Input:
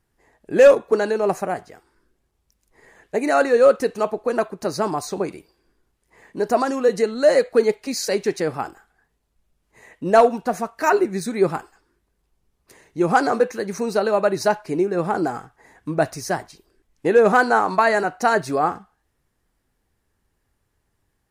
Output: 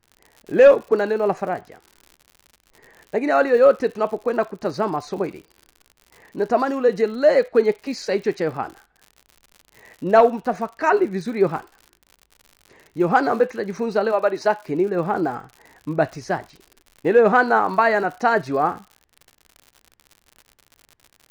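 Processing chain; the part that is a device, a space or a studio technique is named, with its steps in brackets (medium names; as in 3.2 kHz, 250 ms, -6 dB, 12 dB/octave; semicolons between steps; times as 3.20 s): lo-fi chain (low-pass 3.7 kHz 12 dB/octave; wow and flutter 19 cents; crackle 93 per s -34 dBFS); 14.11–14.65 s: high-pass 460 Hz -> 200 Hz 12 dB/octave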